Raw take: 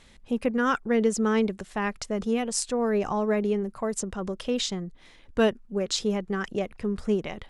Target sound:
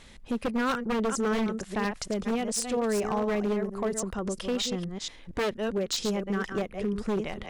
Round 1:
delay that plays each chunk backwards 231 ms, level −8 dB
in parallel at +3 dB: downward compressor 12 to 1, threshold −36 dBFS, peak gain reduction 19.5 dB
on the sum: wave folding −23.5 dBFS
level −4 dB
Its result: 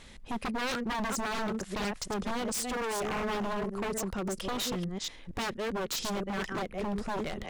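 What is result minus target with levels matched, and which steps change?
wave folding: distortion +13 dB
change: wave folding −17.5 dBFS

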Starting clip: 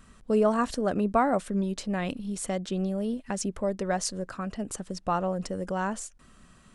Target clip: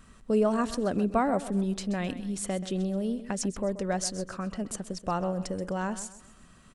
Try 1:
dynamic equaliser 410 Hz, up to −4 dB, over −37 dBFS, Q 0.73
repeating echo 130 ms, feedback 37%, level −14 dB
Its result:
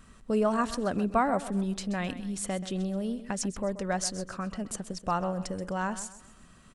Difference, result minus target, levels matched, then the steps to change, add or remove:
1,000 Hz band +2.5 dB
change: dynamic equaliser 1,100 Hz, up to −4 dB, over −37 dBFS, Q 0.73

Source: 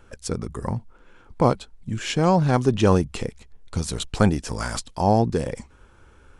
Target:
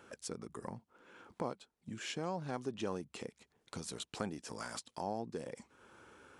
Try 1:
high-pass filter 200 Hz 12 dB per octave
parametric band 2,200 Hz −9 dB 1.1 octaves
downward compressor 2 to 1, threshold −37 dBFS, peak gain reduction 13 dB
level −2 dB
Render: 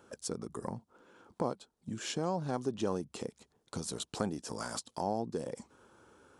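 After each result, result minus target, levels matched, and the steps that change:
downward compressor: peak gain reduction −6 dB; 2,000 Hz band −5.0 dB
change: downward compressor 2 to 1, threshold −48 dBFS, peak gain reduction 18.5 dB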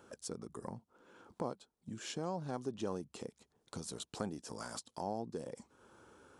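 2,000 Hz band −4.5 dB
remove: parametric band 2,200 Hz −9 dB 1.1 octaves

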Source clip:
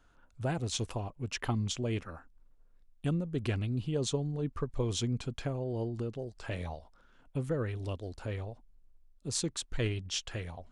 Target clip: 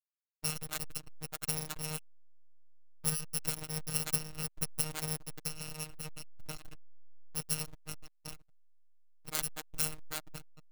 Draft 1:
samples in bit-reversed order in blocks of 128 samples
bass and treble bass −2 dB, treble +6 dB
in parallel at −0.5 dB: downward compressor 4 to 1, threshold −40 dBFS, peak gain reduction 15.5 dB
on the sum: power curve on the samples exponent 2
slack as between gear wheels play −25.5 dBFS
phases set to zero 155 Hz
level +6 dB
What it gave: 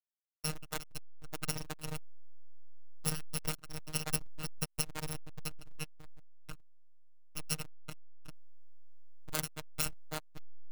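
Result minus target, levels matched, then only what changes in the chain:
slack as between gear wheels: distortion +9 dB
change: slack as between gear wheels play −32.5 dBFS

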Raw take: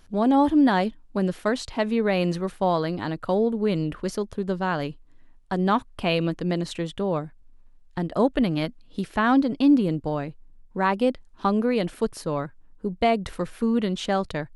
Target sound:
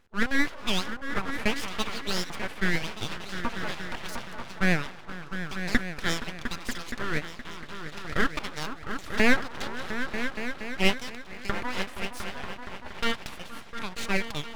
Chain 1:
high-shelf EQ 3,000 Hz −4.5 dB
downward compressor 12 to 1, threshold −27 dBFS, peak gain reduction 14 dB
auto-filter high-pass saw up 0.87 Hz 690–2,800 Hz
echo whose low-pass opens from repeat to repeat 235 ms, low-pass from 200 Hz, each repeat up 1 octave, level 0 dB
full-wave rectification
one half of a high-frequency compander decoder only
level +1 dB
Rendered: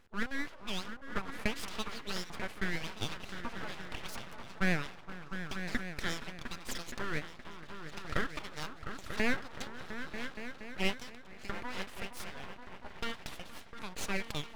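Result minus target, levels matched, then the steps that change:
downward compressor: peak gain reduction +14 dB
remove: downward compressor 12 to 1, threshold −27 dBFS, peak gain reduction 14 dB

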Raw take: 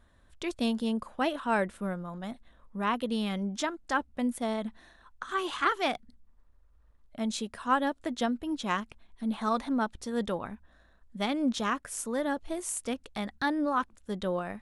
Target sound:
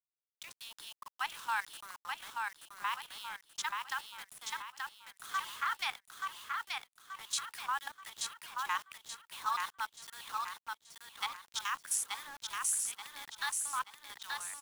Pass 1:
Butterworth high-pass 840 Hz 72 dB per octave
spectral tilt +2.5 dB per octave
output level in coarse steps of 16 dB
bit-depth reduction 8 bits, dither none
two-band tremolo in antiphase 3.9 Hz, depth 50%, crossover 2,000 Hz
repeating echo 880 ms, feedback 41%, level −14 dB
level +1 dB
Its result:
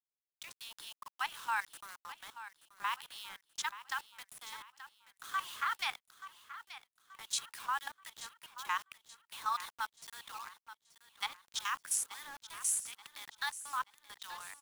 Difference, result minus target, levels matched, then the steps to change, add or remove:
echo-to-direct −10.5 dB
change: repeating echo 880 ms, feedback 41%, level −3.5 dB

